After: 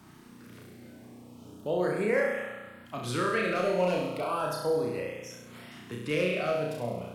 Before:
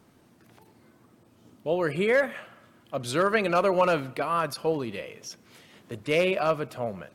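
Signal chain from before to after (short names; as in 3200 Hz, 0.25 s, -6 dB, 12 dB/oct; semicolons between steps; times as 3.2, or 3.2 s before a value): flutter echo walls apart 5.7 m, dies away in 0.92 s; LFO notch saw up 0.35 Hz 470–6600 Hz; three-band squash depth 40%; gain -6 dB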